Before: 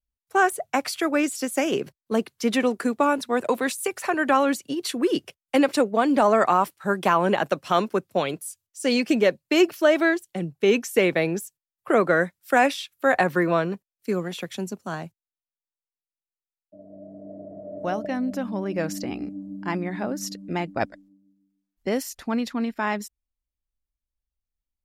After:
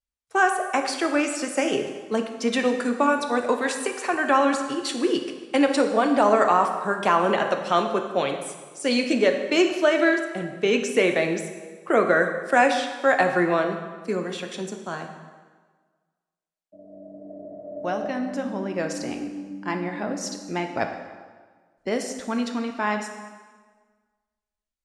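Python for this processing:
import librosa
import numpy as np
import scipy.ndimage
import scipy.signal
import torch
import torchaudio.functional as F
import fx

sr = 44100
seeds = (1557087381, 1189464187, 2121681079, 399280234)

y = scipy.signal.sosfilt(scipy.signal.butter(6, 9700.0, 'lowpass', fs=sr, output='sos'), x)
y = fx.low_shelf(y, sr, hz=180.0, db=-7.5)
y = fx.rev_plate(y, sr, seeds[0], rt60_s=1.5, hf_ratio=0.8, predelay_ms=0, drr_db=4.5)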